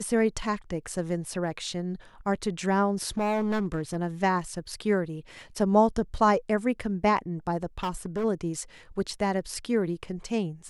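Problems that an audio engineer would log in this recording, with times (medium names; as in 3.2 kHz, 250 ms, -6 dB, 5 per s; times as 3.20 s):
3.17–3.97 s: clipped -23.5 dBFS
7.83–8.25 s: clipped -25.5 dBFS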